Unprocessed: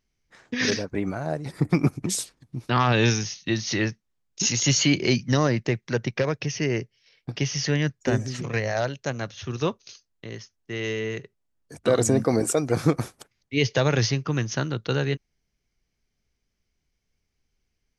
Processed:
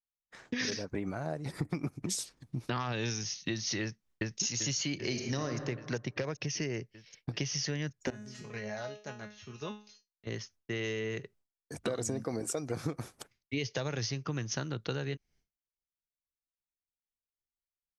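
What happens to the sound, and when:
0:03.82–0:04.41: delay throw 390 ms, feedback 65%, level −1.5 dB
0:04.97–0:05.50: thrown reverb, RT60 1.1 s, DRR 4 dB
0:08.10–0:10.27: tuned comb filter 210 Hz, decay 0.38 s, mix 90%
whole clip: downward expander −55 dBFS; dynamic equaliser 5,500 Hz, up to +5 dB, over −41 dBFS, Q 1.8; downward compressor 6 to 1, threshold −32 dBFS

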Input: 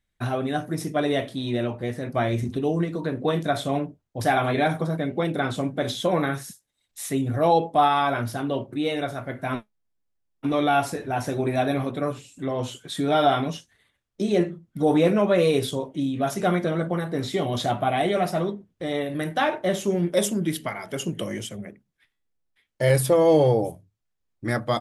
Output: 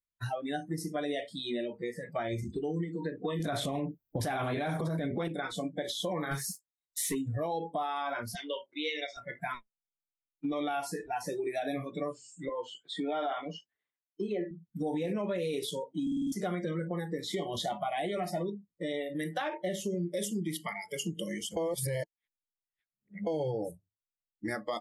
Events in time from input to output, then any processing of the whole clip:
0:03.40–0:05.28: clip gain +11.5 dB
0:06.31–0:07.15: leveller curve on the samples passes 2
0:08.35–0:09.17: loudspeaker in its box 480–6,500 Hz, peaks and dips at 710 Hz −5 dB, 1,300 Hz −6 dB, 2,100 Hz +7 dB, 3,300 Hz +6 dB, 5,600 Hz +7 dB
0:12.49–0:14.51: three-way crossover with the lows and the highs turned down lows −14 dB, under 220 Hz, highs −16 dB, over 3,500 Hz
0:16.02: stutter in place 0.05 s, 6 plays
0:21.57–0:23.27: reverse
whole clip: noise reduction from a noise print of the clip's start 24 dB; brickwall limiter −17 dBFS; downward compressor 2.5 to 1, threshold −34 dBFS

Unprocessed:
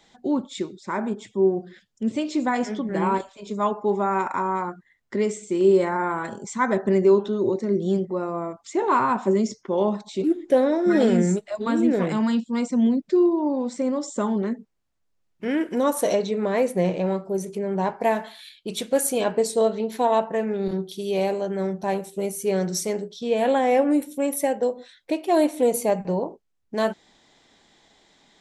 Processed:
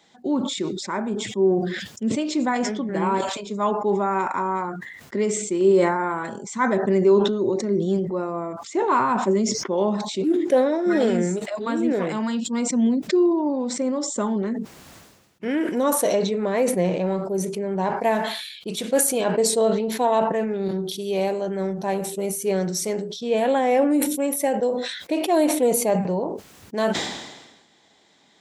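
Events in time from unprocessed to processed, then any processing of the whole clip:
0:10.49–0:12.45: bass and treble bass −6 dB, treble −1 dB
whole clip: high-pass filter 100 Hz; level that may fall only so fast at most 49 dB per second

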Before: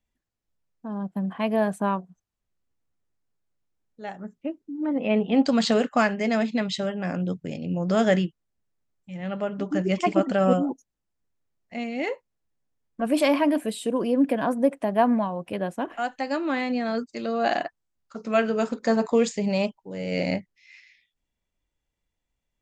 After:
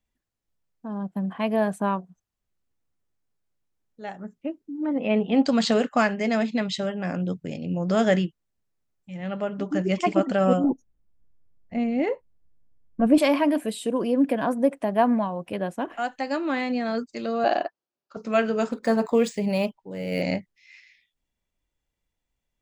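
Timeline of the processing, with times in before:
0:10.64–0:13.18: spectral tilt −3.5 dB per octave
0:17.44–0:18.17: loudspeaker in its box 260–5,300 Hz, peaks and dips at 370 Hz +6 dB, 590 Hz +5 dB, 2,000 Hz −8 dB, 3,600 Hz −4 dB
0:18.71–0:20.22: linearly interpolated sample-rate reduction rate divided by 3×

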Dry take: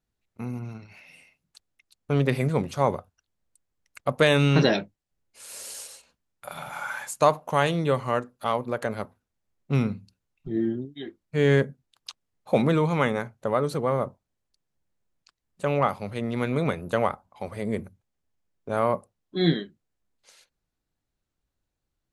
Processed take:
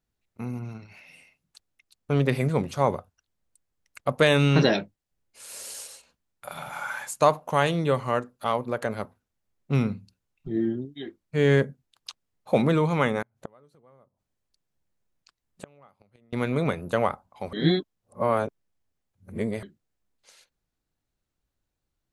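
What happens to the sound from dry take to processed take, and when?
0:13.22–0:16.33: gate with flip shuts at −23 dBFS, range −32 dB
0:17.53–0:19.63: reverse

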